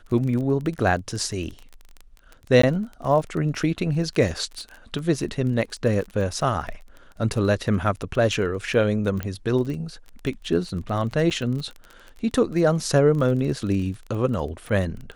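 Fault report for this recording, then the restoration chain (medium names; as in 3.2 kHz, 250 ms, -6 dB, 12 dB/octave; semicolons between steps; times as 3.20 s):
crackle 24 per s -30 dBFS
2.62–2.63 s: dropout 14 ms
9.23 s: pop -15 dBFS
11.30–11.31 s: dropout 7.4 ms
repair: de-click; interpolate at 2.62 s, 14 ms; interpolate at 11.30 s, 7.4 ms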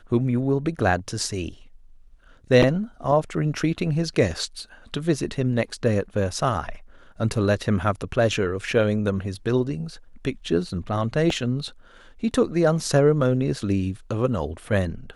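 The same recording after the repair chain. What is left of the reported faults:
nothing left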